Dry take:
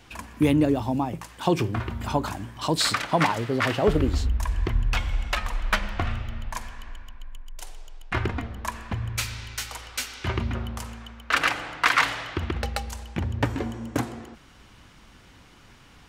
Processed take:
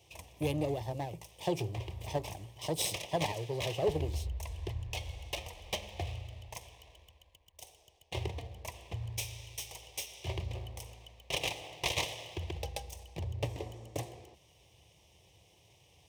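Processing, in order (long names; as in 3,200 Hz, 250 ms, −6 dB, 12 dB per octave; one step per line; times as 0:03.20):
lower of the sound and its delayed copy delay 0.35 ms
high-pass filter 70 Hz 24 dB per octave
phaser with its sweep stopped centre 590 Hz, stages 4
level −6 dB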